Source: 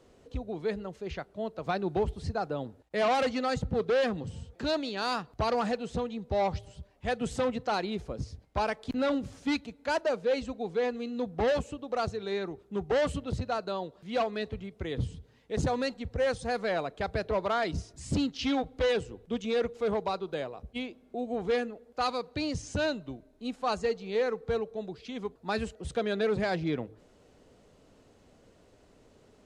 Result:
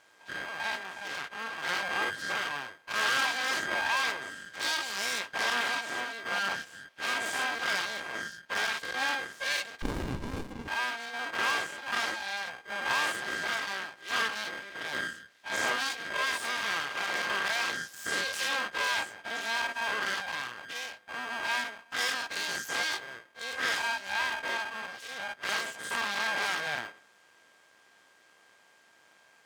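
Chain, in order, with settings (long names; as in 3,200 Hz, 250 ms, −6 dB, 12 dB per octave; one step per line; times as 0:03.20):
every bin's largest magnitude spread in time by 120 ms
ring modulation 800 Hz
full-wave rectification
high-pass filter 1,100 Hz 6 dB per octave
0:09.82–0:10.68: windowed peak hold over 65 samples
level +3 dB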